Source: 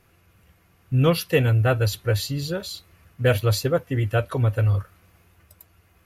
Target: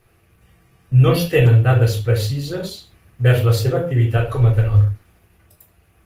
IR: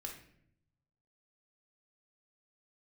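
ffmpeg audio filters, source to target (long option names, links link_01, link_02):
-filter_complex "[0:a]asplit=3[link_01][link_02][link_03];[link_01]afade=type=out:start_time=4.16:duration=0.02[link_04];[link_02]asubboost=boost=9:cutoff=54,afade=type=in:start_time=4.16:duration=0.02,afade=type=out:start_time=4.79:duration=0.02[link_05];[link_03]afade=type=in:start_time=4.79:duration=0.02[link_06];[link_04][link_05][link_06]amix=inputs=3:normalize=0[link_07];[1:a]atrim=start_sample=2205,afade=type=out:start_time=0.28:duration=0.01,atrim=end_sample=12789,asetrate=61740,aresample=44100[link_08];[link_07][link_08]afir=irnorm=-1:irlink=0,volume=8.5dB" -ar 48000 -c:a libopus -b:a 20k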